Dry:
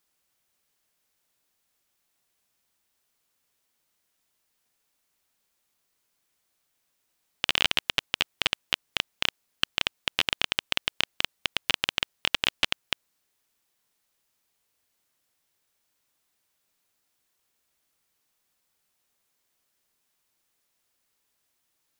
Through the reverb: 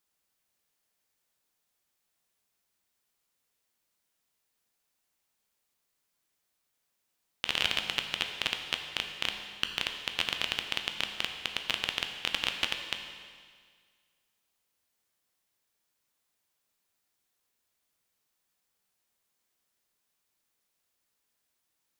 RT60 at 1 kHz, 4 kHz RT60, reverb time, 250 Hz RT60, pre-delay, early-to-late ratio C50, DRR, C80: 1.8 s, 1.8 s, 1.8 s, 1.8 s, 11 ms, 6.0 dB, 4.0 dB, 7.0 dB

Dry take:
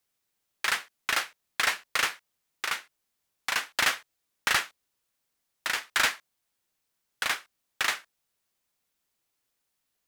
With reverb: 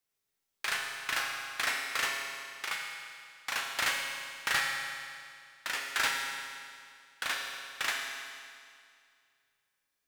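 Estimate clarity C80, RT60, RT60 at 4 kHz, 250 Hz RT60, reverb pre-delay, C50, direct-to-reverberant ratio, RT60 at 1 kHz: 3.0 dB, 2.2 s, 2.1 s, 2.2 s, 7 ms, 2.0 dB, 0.0 dB, 2.2 s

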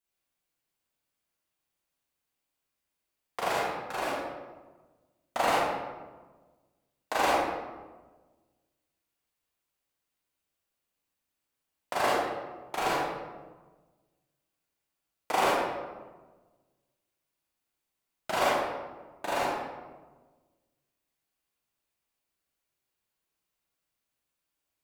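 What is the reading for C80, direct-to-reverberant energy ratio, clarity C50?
0.5 dB, -7.5 dB, -2.5 dB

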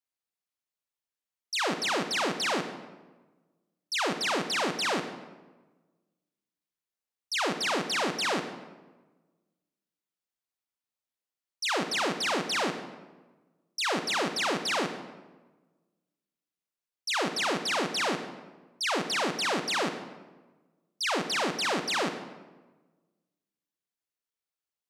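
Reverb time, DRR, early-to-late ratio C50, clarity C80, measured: 1.2 s, 8.0 dB, 8.5 dB, 10.5 dB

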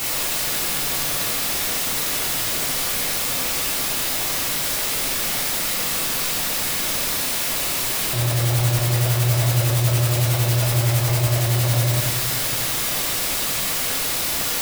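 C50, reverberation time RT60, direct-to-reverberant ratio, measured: 3.0 dB, 1.2 s, -4.5 dB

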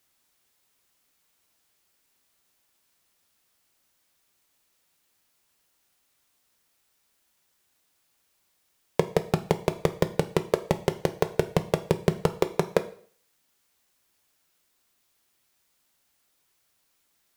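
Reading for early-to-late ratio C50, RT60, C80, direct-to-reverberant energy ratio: 15.5 dB, 0.50 s, 19.5 dB, 9.5 dB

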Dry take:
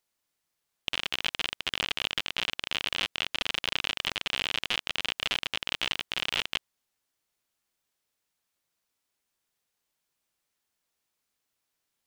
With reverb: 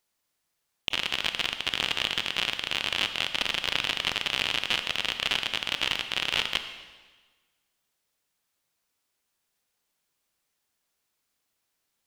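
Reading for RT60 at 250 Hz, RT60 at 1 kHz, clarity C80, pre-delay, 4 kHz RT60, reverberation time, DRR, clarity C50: 1.4 s, 1.4 s, 10.5 dB, 21 ms, 1.3 s, 1.4 s, 8.0 dB, 9.0 dB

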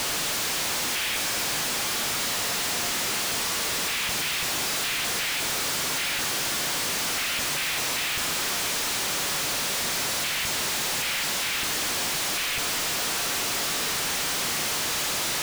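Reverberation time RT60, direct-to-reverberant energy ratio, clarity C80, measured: 2.7 s, 9.0 dB, 11.0 dB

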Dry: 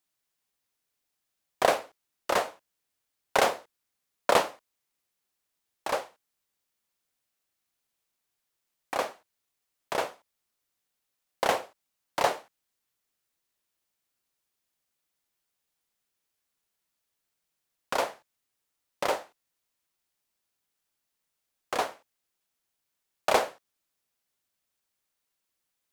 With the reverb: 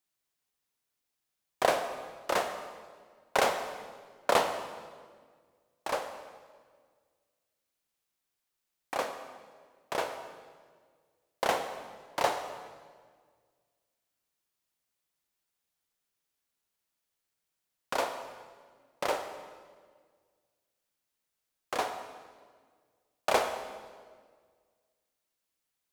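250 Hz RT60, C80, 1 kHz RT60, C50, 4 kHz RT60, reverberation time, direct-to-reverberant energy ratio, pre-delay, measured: 1.9 s, 9.0 dB, 1.6 s, 8.0 dB, 1.4 s, 1.7 s, 7.0 dB, 30 ms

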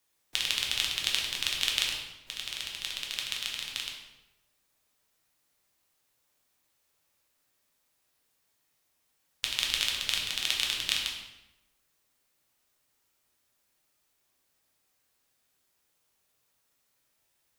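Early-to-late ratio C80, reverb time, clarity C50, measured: 6.0 dB, 0.95 s, 4.0 dB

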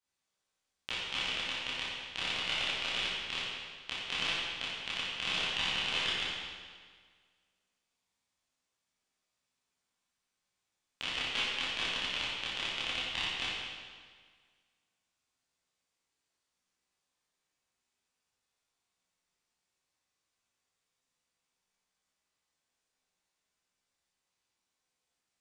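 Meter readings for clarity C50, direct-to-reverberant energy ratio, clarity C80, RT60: -3.5 dB, -11.0 dB, -0.5 dB, 1.7 s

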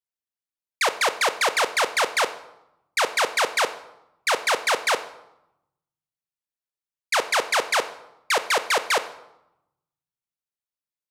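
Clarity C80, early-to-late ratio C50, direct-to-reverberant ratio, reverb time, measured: 16.5 dB, 14.0 dB, 11.5 dB, 0.85 s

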